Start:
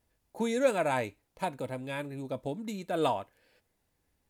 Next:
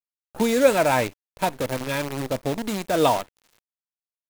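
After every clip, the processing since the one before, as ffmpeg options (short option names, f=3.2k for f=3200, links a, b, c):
-af "acrusher=bits=7:dc=4:mix=0:aa=0.000001,volume=9dB"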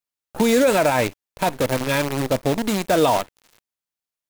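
-af "alimiter=level_in=13.5dB:limit=-1dB:release=50:level=0:latency=1,volume=-8dB"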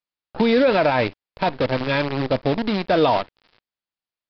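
-af "aresample=11025,aresample=44100"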